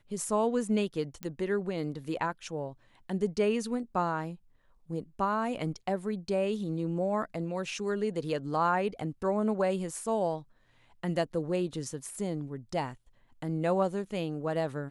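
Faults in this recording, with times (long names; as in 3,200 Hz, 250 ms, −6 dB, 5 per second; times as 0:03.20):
0:01.23: click −22 dBFS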